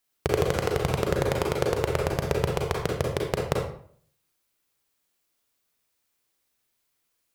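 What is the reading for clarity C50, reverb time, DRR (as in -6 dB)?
3.0 dB, 0.55 s, 0.0 dB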